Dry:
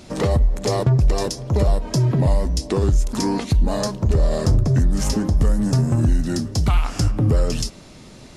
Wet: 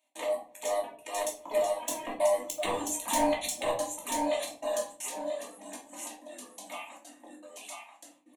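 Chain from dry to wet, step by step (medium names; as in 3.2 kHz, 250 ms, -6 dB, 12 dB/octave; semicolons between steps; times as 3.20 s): Doppler pass-by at 2.74 s, 11 m/s, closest 6.9 m; feedback delay 987 ms, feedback 22%, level -4 dB; reverb removal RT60 2 s; gate -51 dBFS, range -19 dB; trance gate "x.xxxxxxxxxx.xxx" 198 bpm -60 dB; elliptic high-pass 310 Hz, stop band 60 dB; saturation -22 dBFS, distortion -13 dB; treble shelf 2.9 kHz +10.5 dB; static phaser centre 1.4 kHz, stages 6; simulated room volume 300 m³, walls furnished, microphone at 2.7 m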